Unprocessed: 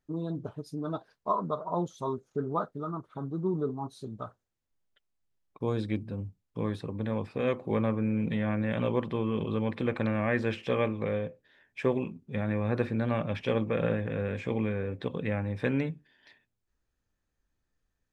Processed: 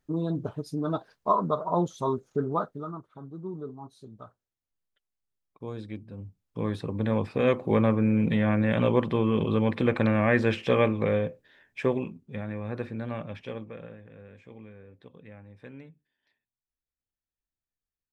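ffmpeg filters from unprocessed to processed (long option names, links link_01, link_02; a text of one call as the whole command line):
ffmpeg -i in.wav -af "volume=17.5dB,afade=type=out:start_time=2.28:duration=0.86:silence=0.251189,afade=type=in:start_time=6.09:duration=1.02:silence=0.237137,afade=type=out:start_time=11.22:duration=1.28:silence=0.298538,afade=type=out:start_time=13.18:duration=0.72:silence=0.251189" out.wav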